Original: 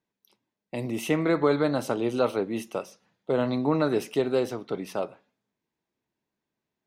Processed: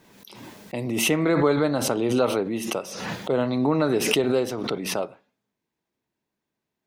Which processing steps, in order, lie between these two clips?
swell ahead of each attack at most 39 dB/s; trim +1.5 dB

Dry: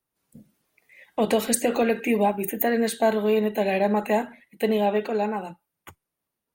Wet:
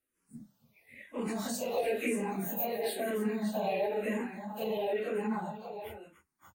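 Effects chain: phase randomisation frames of 100 ms; peak limiter -18 dBFS, peak gain reduction 10 dB; compression 1.5:1, threshold -34 dBFS, peak gain reduction 4.5 dB; multi-tap echo 289/580 ms -15.5/-9.5 dB; barber-pole phaser -1 Hz

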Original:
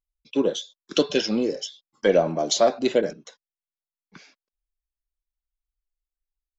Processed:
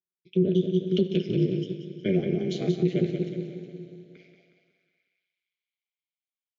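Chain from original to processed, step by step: vowel filter i; bass shelf 200 Hz +7 dB; plate-style reverb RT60 3.2 s, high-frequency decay 0.95×, DRR 8.5 dB; high-pass sweep 280 Hz -> 3 kHz, 3.97–5.26 s; on a send: feedback delay 182 ms, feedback 45%, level -7 dB; on the sum: peak limiter -17.5 dBFS, peak gain reduction 11.5 dB; ring modulator 95 Hz; 1.07–2.06 s: upward expansion 1.5:1, over -37 dBFS; trim +5 dB

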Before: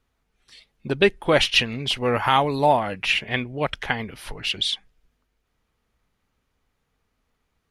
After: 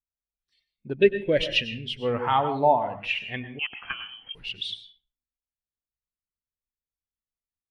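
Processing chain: 0.96–1.99 s: high-order bell 980 Hz -12 dB 1.1 oct; reverberation RT60 0.60 s, pre-delay 93 ms, DRR 6.5 dB; 3.59–4.35 s: frequency inversion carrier 3.2 kHz; spectral contrast expander 1.5:1; trim -2 dB

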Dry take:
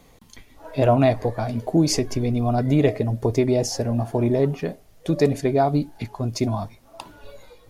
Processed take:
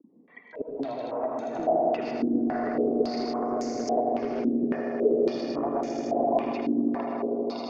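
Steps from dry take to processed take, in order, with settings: slices played last to first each 88 ms, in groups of 3; spectral gate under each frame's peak -25 dB strong; high-pass 220 Hz 24 dB/octave; bass shelf 490 Hz -5.5 dB; compression 6:1, threshold -30 dBFS, peak gain reduction 14 dB; echo with a slow build-up 80 ms, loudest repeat 8, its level -10 dB; hard clipper -24.5 dBFS, distortion -18 dB; distance through air 180 m; reverberation RT60 1.2 s, pre-delay 73 ms, DRR 0.5 dB; step-sequenced low-pass 3.6 Hz 290–6800 Hz; trim -2 dB

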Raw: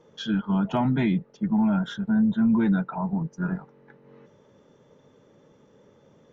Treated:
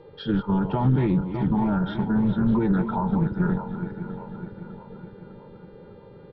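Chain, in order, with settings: backward echo that repeats 302 ms, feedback 72%, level -12 dB; comb 2.2 ms, depth 64%; peak limiter -21.5 dBFS, peak gain reduction 8 dB; bass shelf 98 Hz +8.5 dB; resampled via 11.025 kHz; tilt shelf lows +7 dB, about 1.4 kHz; mains buzz 400 Hz, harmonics 11, -59 dBFS -7 dB/octave; loudspeaker Doppler distortion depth 0.17 ms

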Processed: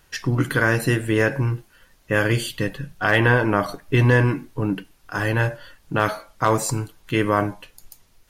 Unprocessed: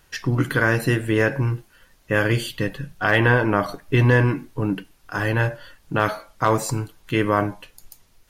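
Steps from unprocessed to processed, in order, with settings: dynamic bell 8.5 kHz, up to +4 dB, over -44 dBFS, Q 0.89

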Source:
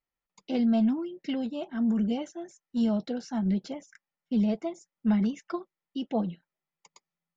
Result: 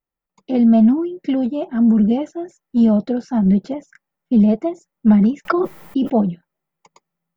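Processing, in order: level rider gain up to 7 dB; peaking EQ 5.4 kHz -12.5 dB 3 oct; 5.45–6.10 s: level flattener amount 100%; trim +5.5 dB

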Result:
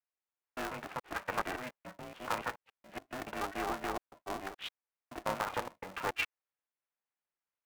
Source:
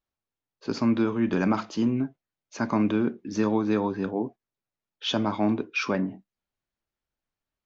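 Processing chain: slices played last to first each 142 ms, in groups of 4; mistuned SSB +98 Hz 480–2700 Hz; polarity switched at an audio rate 190 Hz; trim -4.5 dB

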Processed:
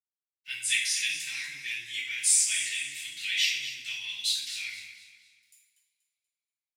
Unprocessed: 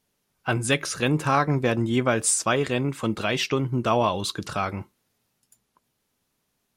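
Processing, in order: in parallel at -2 dB: peak limiter -16.5 dBFS, peak gain reduction 8 dB; on the sum: crossover distortion -56.5 dBFS; elliptic high-pass 2 kHz, stop band 40 dB; on a send: feedback delay 240 ms, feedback 36%, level -12 dB; on the sum: two-slope reverb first 0.58 s, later 2.3 s, from -24 dB, DRR -6.5 dB; trim -8.5 dB

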